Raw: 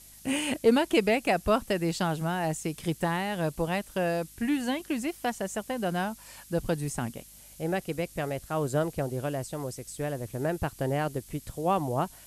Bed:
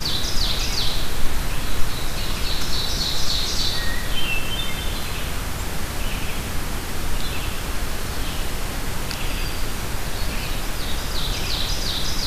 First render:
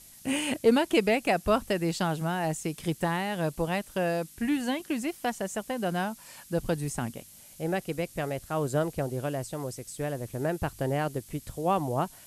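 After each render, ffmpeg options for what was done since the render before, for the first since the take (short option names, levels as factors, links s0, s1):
-af "bandreject=f=50:t=h:w=4,bandreject=f=100:t=h:w=4"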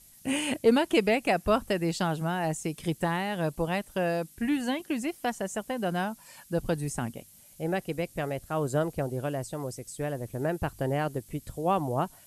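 -af "afftdn=nr=6:nf=-52"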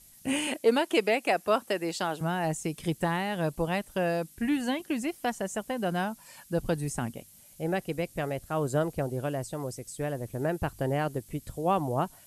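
-filter_complex "[0:a]asettb=1/sr,asplit=3[s0][s1][s2];[s0]atrim=end=0.474[s3];[s1]atrim=start=0.47:end=2.21,asetpts=PTS-STARTPTS,afade=t=in:d=0.004:c=qsin,afade=t=out:st=1.736:d=0.004:c=qsin,highpass=310[s4];[s2]atrim=start=2.206[s5];[s3][s4]acrossfade=d=0.004:c1=hsin:c2=qsin[s6];[s6][s5]acrossfade=d=0.004:c1=qsin:c2=hsin"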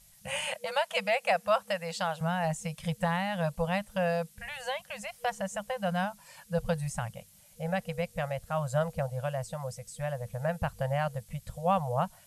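-af "afftfilt=real='re*(1-between(b*sr/4096,210,480))':imag='im*(1-between(b*sr/4096,210,480))':win_size=4096:overlap=0.75,highshelf=f=8200:g=-7"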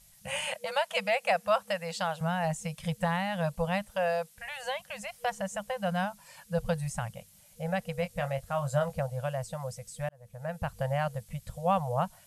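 -filter_complex "[0:a]asettb=1/sr,asplit=3[s0][s1][s2];[s0]atrim=end=3.904[s3];[s1]atrim=start=3.9:end=4.63,asetpts=PTS-STARTPTS,afade=t=in:d=0.004:c=qsin,afade=t=out:st=0.726:d=0.004:c=qsin,lowshelf=f=440:t=q:w=1.5:g=-8.5[s4];[s2]atrim=start=4.626[s5];[s3][s4]acrossfade=d=0.004:c1=hsin:c2=qsin[s6];[s6][s5]acrossfade=d=0.004:c1=qsin:c2=hsin,asettb=1/sr,asplit=3[s7][s8][s9];[s7]atrim=end=7.954[s10];[s8]atrim=start=7.95:end=9,asetpts=PTS-STARTPTS,afade=t=in:d=0.004:c=qsin,afade=t=out:st=1.046:d=0.004:c=qsin,asplit=2[s11][s12];[s12]adelay=22,volume=0.376[s13];[s11][s13]amix=inputs=2:normalize=0,atrim=end_sample=46305[s14];[s9]atrim=start=8.996[s15];[s10][s14]acrossfade=d=0.004:c1=hsin:c2=qsin[s16];[s16][s15]acrossfade=d=0.004:c1=qsin:c2=hsin,asplit=2[s17][s18];[s17]atrim=end=10.09,asetpts=PTS-STARTPTS,afade=t=out:st=10.086:d=0.004:c=hsin[s19];[s18]atrim=start=10.09,asetpts=PTS-STARTPTS,afade=t=in:d=0.71[s20];[s19][s20]concat=n=2:v=0:a=1"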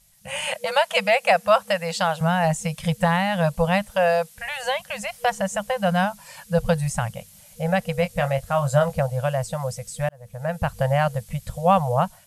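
-af "dynaudnorm=f=170:g=5:m=2.99"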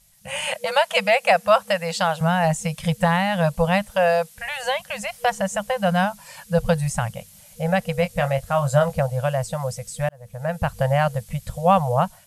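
-af "volume=1.12"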